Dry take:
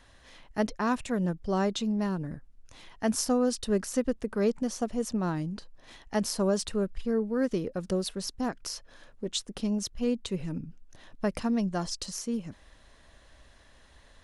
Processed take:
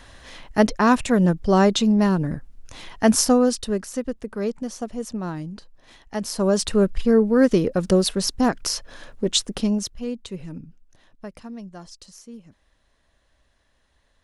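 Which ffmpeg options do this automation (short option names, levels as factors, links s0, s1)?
-af "volume=12.6,afade=t=out:st=3.15:d=0.66:silence=0.298538,afade=t=in:st=6.24:d=0.62:silence=0.281838,afade=t=out:st=9.4:d=0.63:silence=0.237137,afade=t=out:st=10.6:d=0.72:silence=0.398107"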